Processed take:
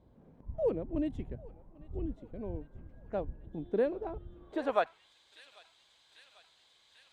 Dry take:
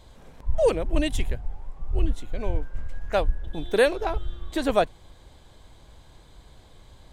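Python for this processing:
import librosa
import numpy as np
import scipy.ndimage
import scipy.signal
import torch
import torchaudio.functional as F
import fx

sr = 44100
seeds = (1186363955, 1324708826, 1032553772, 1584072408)

y = fx.echo_thinned(x, sr, ms=793, feedback_pct=70, hz=560.0, wet_db=-20.0)
y = fx.filter_sweep_bandpass(y, sr, from_hz=220.0, to_hz=3700.0, start_s=4.27, end_s=5.13, q=0.95)
y = y * librosa.db_to_amplitude(-3.5)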